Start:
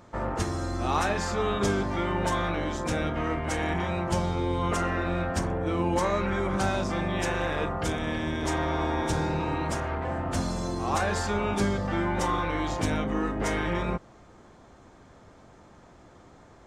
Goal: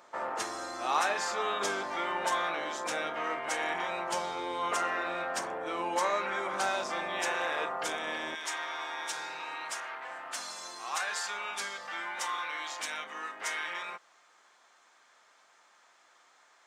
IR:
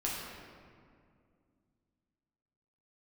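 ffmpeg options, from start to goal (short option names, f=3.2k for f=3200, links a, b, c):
-af "asetnsamples=n=441:p=0,asendcmd='8.35 highpass f 1400',highpass=650"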